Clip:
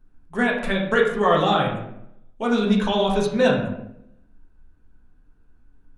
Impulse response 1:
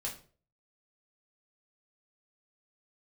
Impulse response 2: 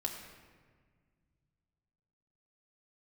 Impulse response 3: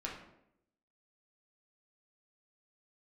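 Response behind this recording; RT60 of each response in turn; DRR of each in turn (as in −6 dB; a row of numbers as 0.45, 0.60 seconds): 3; 0.45, 1.6, 0.80 seconds; −3.0, 0.0, −3.5 decibels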